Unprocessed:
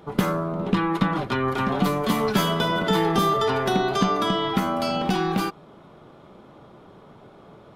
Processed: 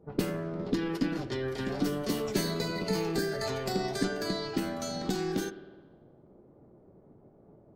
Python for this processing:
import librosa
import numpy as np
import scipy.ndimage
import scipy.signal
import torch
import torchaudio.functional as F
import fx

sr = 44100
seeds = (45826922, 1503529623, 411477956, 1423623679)

y = fx.env_lowpass(x, sr, base_hz=470.0, full_db=-19.5)
y = fx.peak_eq(y, sr, hz=1000.0, db=-13.5, octaves=2.2)
y = fx.formant_shift(y, sr, semitones=5)
y = fx.rev_spring(y, sr, rt60_s=1.2, pass_ms=(51,), chirp_ms=40, drr_db=13.0)
y = y * librosa.db_to_amplitude(-4.5)